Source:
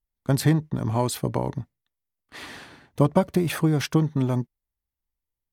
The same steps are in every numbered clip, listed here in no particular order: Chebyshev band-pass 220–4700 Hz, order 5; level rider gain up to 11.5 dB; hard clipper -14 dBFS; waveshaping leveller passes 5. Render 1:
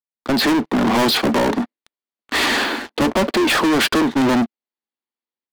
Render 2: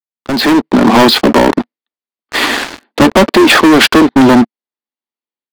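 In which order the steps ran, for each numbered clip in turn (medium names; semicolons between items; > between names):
Chebyshev band-pass > level rider > hard clipper > waveshaping leveller; Chebyshev band-pass > waveshaping leveller > hard clipper > level rider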